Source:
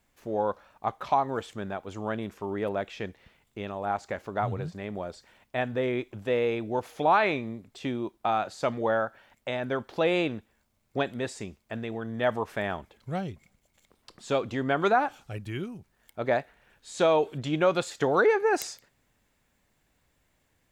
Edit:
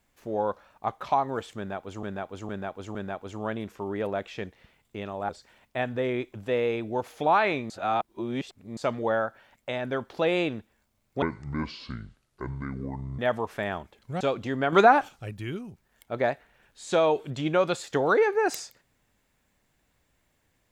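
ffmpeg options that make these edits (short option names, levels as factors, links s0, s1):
-filter_complex "[0:a]asplit=12[s0][s1][s2][s3][s4][s5][s6][s7][s8][s9][s10][s11];[s0]atrim=end=2.032[s12];[s1]atrim=start=1.568:end=2.032[s13];[s2]atrim=start=1.568:end=2.032[s14];[s3]atrim=start=1.568:end=3.912[s15];[s4]atrim=start=5.078:end=7.492[s16];[s5]atrim=start=7.488:end=8.562,asetpts=PTS-STARTPTS,areverse[s17];[s6]atrim=start=8.558:end=11.014[s18];[s7]atrim=start=11.01:end=12.17,asetpts=PTS-STARTPTS,asetrate=26019,aresample=44100,atrim=end_sample=86705,asetpts=PTS-STARTPTS[s19];[s8]atrim=start=12.166:end=13.192[s20];[s9]atrim=start=14.278:end=14.802[s21];[s10]atrim=start=14.798:end=15.162,asetpts=PTS-STARTPTS,volume=2[s22];[s11]atrim=start=15.158[s23];[s12][s13]acrossfade=d=0.004:c1=hsin:c2=hsin[s24];[s24][s14]acrossfade=d=0.004:c1=hsin:c2=hsin[s25];[s25][s15]acrossfade=d=0.004:c1=hsin:c2=hsin[s26];[s26][s16]acrossfade=d=0.004:c1=hsin:c2=hsin[s27];[s27][s17]acrossfade=d=0.004:c1=hsin:c2=hsin[s28];[s28][s18]acrossfade=d=0.004:c1=hsin:c2=hsin[s29];[s29][s19]acrossfade=d=0.004:c1=hsin:c2=hsin[s30];[s30][s20]acrossfade=d=0.004:c1=hsin:c2=hsin[s31];[s31][s21]acrossfade=d=0.004:c1=hsin:c2=hsin[s32];[s32][s22]acrossfade=d=0.004:c1=hsin:c2=hsin[s33];[s33][s23]acrossfade=d=0.004:c1=hsin:c2=hsin"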